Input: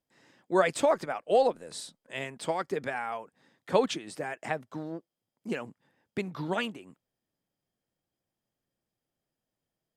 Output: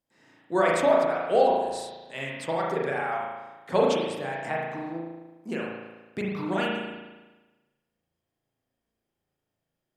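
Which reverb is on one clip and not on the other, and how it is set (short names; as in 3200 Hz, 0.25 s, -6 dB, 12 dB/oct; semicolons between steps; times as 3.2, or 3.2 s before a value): spring tank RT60 1.2 s, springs 36 ms, chirp 80 ms, DRR -3.5 dB; gain -1 dB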